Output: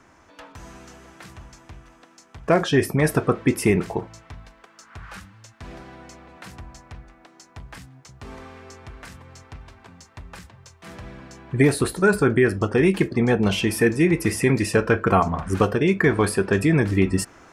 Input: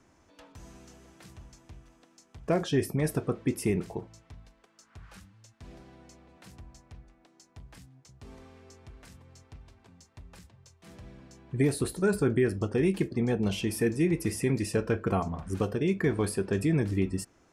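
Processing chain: peaking EQ 1.4 kHz +8 dB 2.1 oct; in parallel at +1.5 dB: gain riding 0.5 s

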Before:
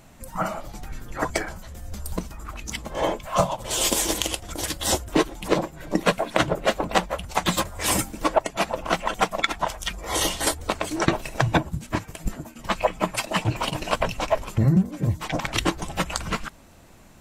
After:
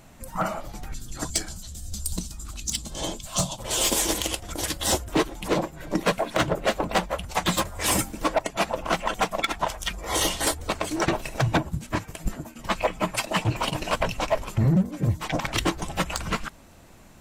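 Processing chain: 0.94–3.59 s: graphic EQ 500/1000/2000/4000/8000 Hz -10/-8/-11/+8/+10 dB; overload inside the chain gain 15.5 dB

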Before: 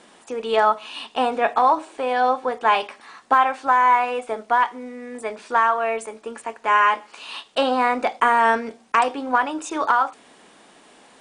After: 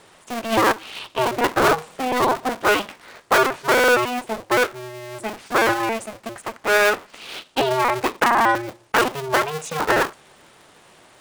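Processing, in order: cycle switcher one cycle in 2, inverted

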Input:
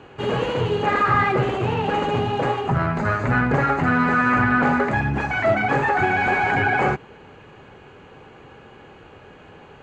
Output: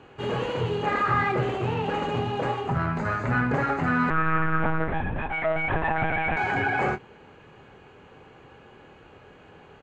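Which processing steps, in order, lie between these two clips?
doubling 25 ms -10 dB; 4.10–6.37 s: monotone LPC vocoder at 8 kHz 160 Hz; trim -5.5 dB

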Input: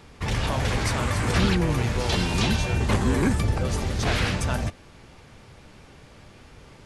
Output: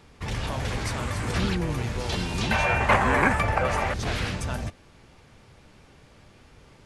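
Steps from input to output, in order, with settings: 2.51–3.94 s: high-order bell 1.2 kHz +14.5 dB 2.6 oct; trim -4.5 dB

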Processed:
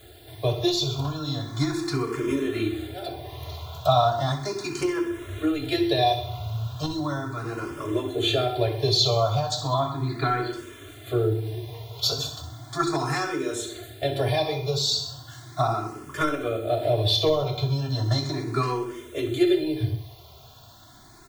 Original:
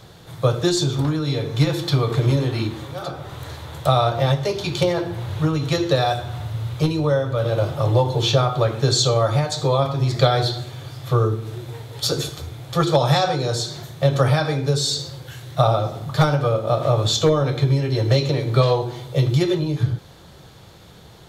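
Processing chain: 9.74–10.53 s: steep low-pass 4.3 kHz 96 dB/octave; added noise blue -55 dBFS; comb 2.9 ms, depth 92%; on a send: feedback delay 64 ms, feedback 51%, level -12 dB; on the sum: barber-pole phaser +0.36 Hz; trim -3.5 dB

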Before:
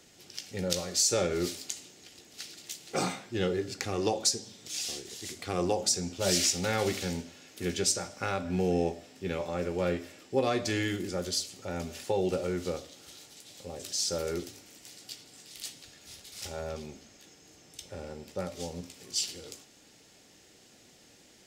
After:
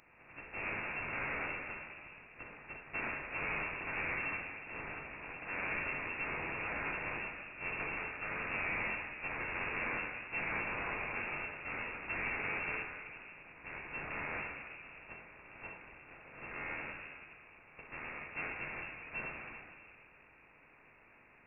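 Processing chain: spectral contrast reduction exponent 0.19; valve stage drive 35 dB, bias 0.5; reverberation RT60 2.0 s, pre-delay 5 ms, DRR -1 dB; frequency inversion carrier 2.7 kHz; trim +1 dB

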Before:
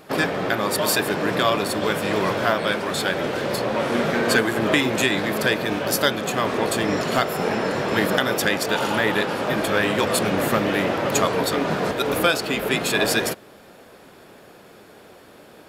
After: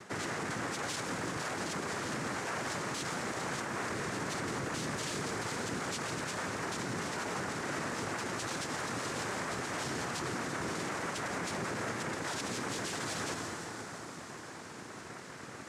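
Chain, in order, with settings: noise-vocoded speech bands 3; reverberation RT60 3.7 s, pre-delay 8 ms, DRR 16 dB; reverse; compression, threshold -28 dBFS, peak gain reduction 14 dB; reverse; peak limiter -28 dBFS, peak gain reduction 12.5 dB; feedback echo behind a high-pass 170 ms, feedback 82%, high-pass 4.8 kHz, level -10 dB

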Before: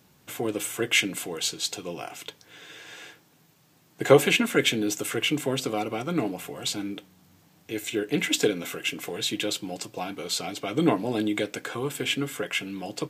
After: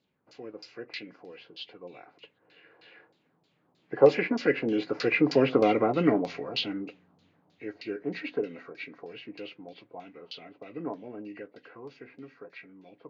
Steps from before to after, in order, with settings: knee-point frequency compression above 1.7 kHz 1.5:1; Doppler pass-by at 5.65 s, 7 m/s, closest 3.4 m; LFO low-pass saw down 3.2 Hz 800–4600 Hz; graphic EQ 250/500/4000 Hz +5/+7/+3 dB

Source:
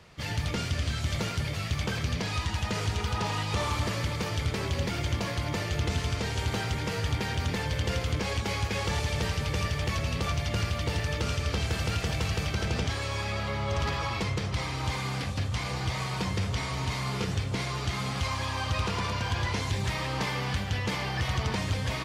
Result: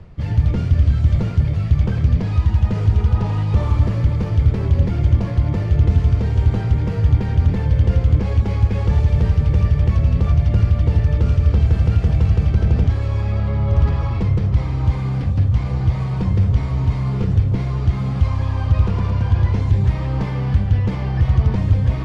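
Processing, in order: tilt EQ -4.5 dB/octave; reverse; upward compressor, threshold -23 dBFS; reverse

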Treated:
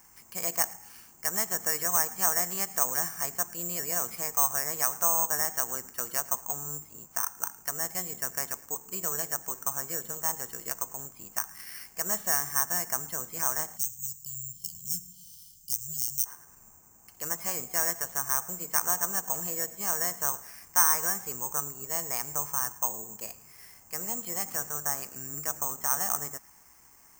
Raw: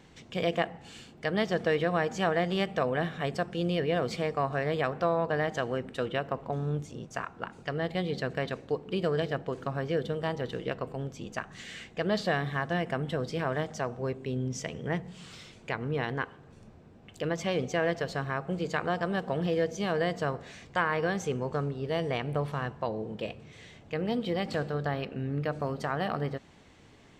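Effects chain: graphic EQ 125/250/500/1000/2000/4000/8000 Hz -8/-4/-8/+10/+4/-12/-3 dB; feedback echo behind a high-pass 109 ms, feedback 41%, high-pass 1.5 kHz, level -18.5 dB; careless resampling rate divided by 6×, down filtered, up zero stuff; spectral selection erased 13.78–16.26 s, 210–2900 Hz; trim -7 dB

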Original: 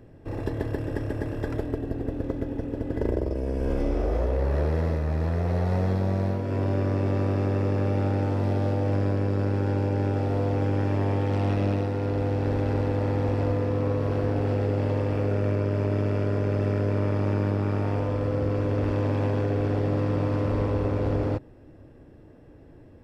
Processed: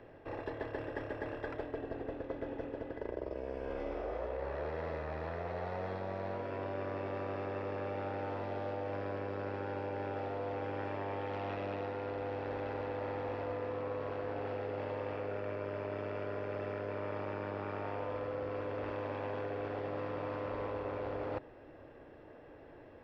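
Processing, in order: three-band isolator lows -16 dB, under 440 Hz, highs -22 dB, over 4 kHz; reverse; compression 4:1, threshold -42 dBFS, peak gain reduction 13 dB; reverse; trim +4.5 dB

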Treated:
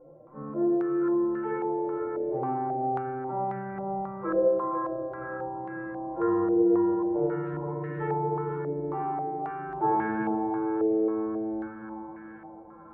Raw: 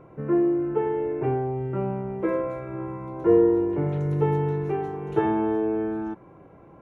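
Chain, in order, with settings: two-band feedback delay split 350 Hz, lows 189 ms, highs 253 ms, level -5 dB; time stretch by phase-locked vocoder 1.9×; bass shelf 380 Hz -7 dB; band-stop 400 Hz, Q 12; reverberation RT60 0.55 s, pre-delay 4 ms, DRR 0.5 dB; step-sequenced low-pass 3.7 Hz 580–1700 Hz; trim -7 dB

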